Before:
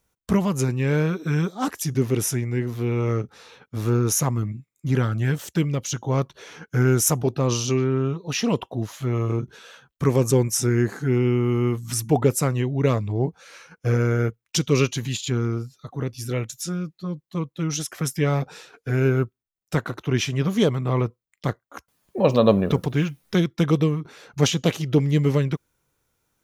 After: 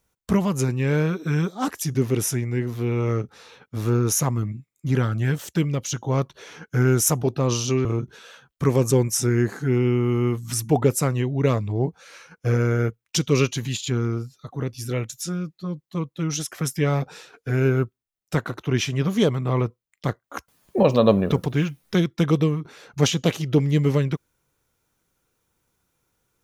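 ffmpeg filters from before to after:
-filter_complex "[0:a]asplit=4[a][b][c][d];[a]atrim=end=7.852[e];[b]atrim=start=9.248:end=21.642[f];[c]atrim=start=21.638:end=22.232,asetpts=PTS-STARTPTS,volume=6dB[g];[d]atrim=start=22.228[h];[e][f]acrossfade=d=0.004:c1=hsin:c2=hsin[i];[i][g]acrossfade=d=0.004:c1=hsin:c2=hsin[j];[j][h]acrossfade=d=0.004:c1=hsin:c2=hsin"

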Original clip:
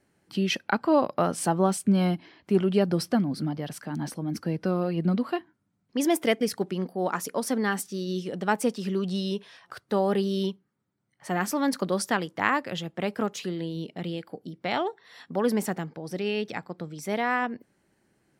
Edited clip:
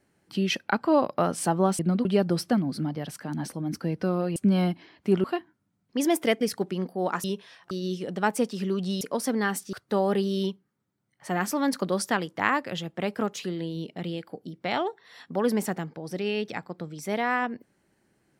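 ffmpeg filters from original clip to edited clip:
-filter_complex "[0:a]asplit=9[a][b][c][d][e][f][g][h][i];[a]atrim=end=1.792[j];[b]atrim=start=4.978:end=5.242[k];[c]atrim=start=2.668:end=4.982[l];[d]atrim=start=1.788:end=2.672[m];[e]atrim=start=5.238:end=7.242[n];[f]atrim=start=9.258:end=9.732[o];[g]atrim=start=7.958:end=9.262[p];[h]atrim=start=7.238:end=7.962[q];[i]atrim=start=9.728[r];[j][k]acrossfade=d=0.004:c1=hsin:c2=hsin[s];[s][l]acrossfade=d=0.004:c1=hsin:c2=hsin[t];[t][m]acrossfade=d=0.004:c1=hsin:c2=hsin[u];[u][n]acrossfade=d=0.004:c1=hsin:c2=hsin[v];[v][o]acrossfade=d=0.004:c1=hsin:c2=hsin[w];[w][p]acrossfade=d=0.004:c1=hsin:c2=hsin[x];[x][q]acrossfade=d=0.004:c1=hsin:c2=hsin[y];[y][r]acrossfade=d=0.004:c1=hsin:c2=hsin"

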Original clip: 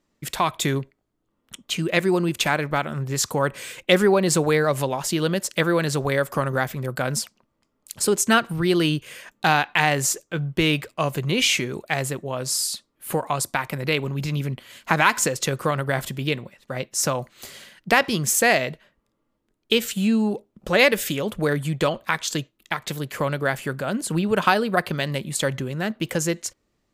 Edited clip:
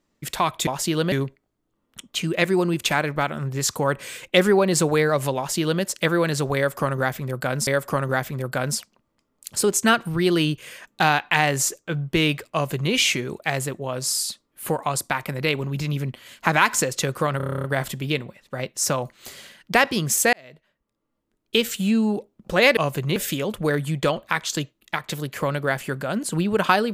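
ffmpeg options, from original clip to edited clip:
-filter_complex "[0:a]asplit=16[a][b][c][d][e][f][g][h][i][j][k][l][m][n][o][p];[a]atrim=end=0.672[q];[b]atrim=start=4.918:end=5.372[r];[c]atrim=start=0.668:end=7.222[s];[d]atrim=start=6.108:end=15.842[t];[e]atrim=start=15.808:end=15.842[u];[f]atrim=start=15.808:end=15.842[v];[g]atrim=start=15.808:end=15.842[w];[h]atrim=start=15.808:end=15.842[x];[i]atrim=start=15.808:end=15.842[y];[j]atrim=start=15.808:end=15.842[z];[k]atrim=start=15.808:end=15.842[aa];[l]atrim=start=15.808:end=15.842[ab];[m]atrim=start=15.808:end=18.5,asetpts=PTS-STARTPTS,afade=t=out:st=2.688:d=0.004:c=hsin[ac];[n]atrim=start=18.5:end=20.942,asetpts=PTS-STARTPTS,afade=t=in:d=1.28[ad];[o]atrim=start=10.968:end=11.362[ae];[p]atrim=start=20.938[af];[q][r]acrossfade=d=0.004:c1=hsin:c2=hsin[ag];[ag][s]acrossfade=d=0.004:c1=hsin:c2=hsin[ah];[ah][t]acrossfade=d=0.004:c1=hsin:c2=hsin[ai];[ai][u]acrossfade=d=0.004:c1=hsin:c2=hsin[aj];[aj][v]acrossfade=d=0.004:c1=hsin:c2=hsin[ak];[ak][w]acrossfade=d=0.004:c1=hsin:c2=hsin[al];[al][x]acrossfade=d=0.004:c1=hsin:c2=hsin[am];[am][y]acrossfade=d=0.004:c1=hsin:c2=hsin[an];[an][z]acrossfade=d=0.004:c1=hsin:c2=hsin[ao];[ao][aa]acrossfade=d=0.004:c1=hsin:c2=hsin[ap];[ap][ab]acrossfade=d=0.004:c1=hsin:c2=hsin[aq];[ac][ad]concat=n=2:v=0:a=1[ar];[aq][ar]acrossfade=d=0.004:c1=hsin:c2=hsin[as];[as][ae]acrossfade=d=0.004:c1=hsin:c2=hsin[at];[at][af]acrossfade=d=0.004:c1=hsin:c2=hsin"

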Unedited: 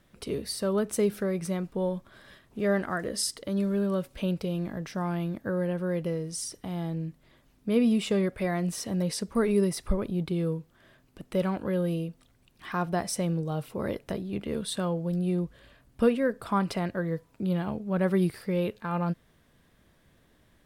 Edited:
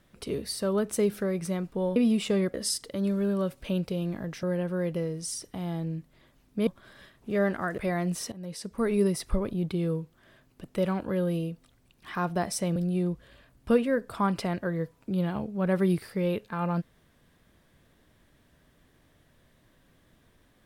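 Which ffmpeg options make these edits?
-filter_complex "[0:a]asplit=8[a][b][c][d][e][f][g][h];[a]atrim=end=1.962[i];[b]atrim=start=7.768:end=8.352[j];[c]atrim=start=3.068:end=4.962[k];[d]atrim=start=5.528:end=7.772[l];[e]atrim=start=1.958:end=3.072[m];[f]atrim=start=8.348:end=8.89,asetpts=PTS-STARTPTS,afade=t=out:st=0.538:d=0.004:c=hsin:silence=0.125893[n];[g]atrim=start=8.89:end=13.332,asetpts=PTS-STARTPTS,afade=t=in:d=0.69:silence=0.125893[o];[h]atrim=start=15.078[p];[i][j]acrossfade=d=0.004:c1=hsin:c2=hsin[q];[q][k]acrossfade=d=0.004:c1=hsin:c2=hsin[r];[r][l]acrossfade=d=0.004:c1=hsin:c2=hsin[s];[s][m]acrossfade=d=0.004:c1=hsin:c2=hsin[t];[n][o]concat=n=2:v=0:a=1[u];[t][u]acrossfade=d=0.004:c1=hsin:c2=hsin[v];[v][p]acrossfade=d=0.004:c1=hsin:c2=hsin"

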